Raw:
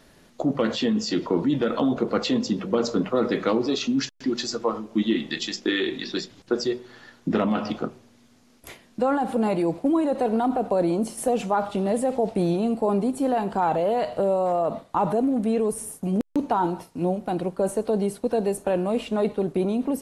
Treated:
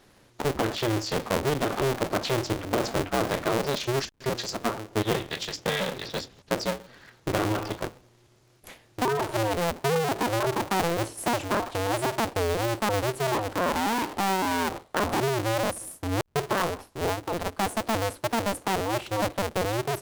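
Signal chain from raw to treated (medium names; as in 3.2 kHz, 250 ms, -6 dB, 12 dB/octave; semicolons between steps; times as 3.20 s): cycle switcher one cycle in 2, inverted; trim -3.5 dB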